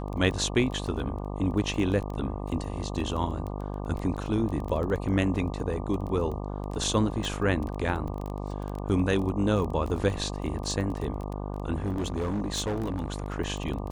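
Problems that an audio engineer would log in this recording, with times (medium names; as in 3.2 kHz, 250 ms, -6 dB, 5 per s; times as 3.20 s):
buzz 50 Hz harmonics 24 -34 dBFS
crackle 14 per s -32 dBFS
7.25 s: pop
11.74–13.36 s: clipped -25.5 dBFS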